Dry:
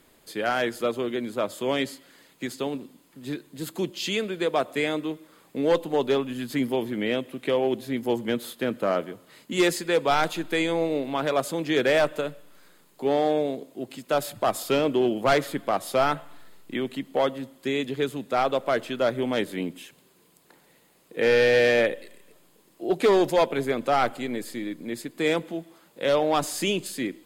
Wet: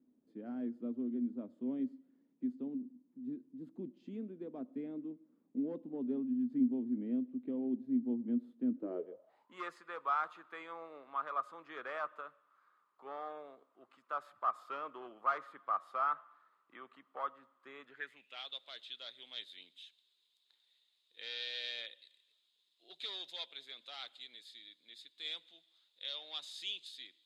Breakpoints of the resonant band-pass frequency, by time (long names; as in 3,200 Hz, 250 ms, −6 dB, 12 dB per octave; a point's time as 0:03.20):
resonant band-pass, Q 9.4
0:08.72 250 Hz
0:09.61 1,200 Hz
0:17.82 1,200 Hz
0:18.47 3,700 Hz